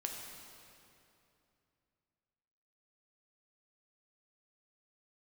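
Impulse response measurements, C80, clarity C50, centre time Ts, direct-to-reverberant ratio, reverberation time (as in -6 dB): 3.5 dB, 2.0 dB, 93 ms, 0.5 dB, 2.7 s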